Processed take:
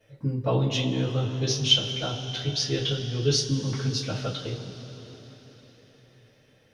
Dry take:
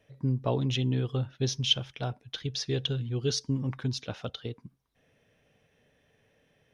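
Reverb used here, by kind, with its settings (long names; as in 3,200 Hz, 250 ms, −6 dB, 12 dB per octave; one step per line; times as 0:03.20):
coupled-rooms reverb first 0.22 s, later 4.5 s, from −21 dB, DRR −9 dB
level −4 dB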